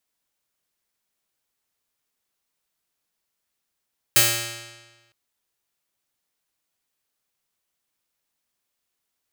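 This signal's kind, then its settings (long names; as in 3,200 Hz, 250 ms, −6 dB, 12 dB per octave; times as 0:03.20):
Karplus-Strong string A#2, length 0.96 s, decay 1.30 s, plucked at 0.47, bright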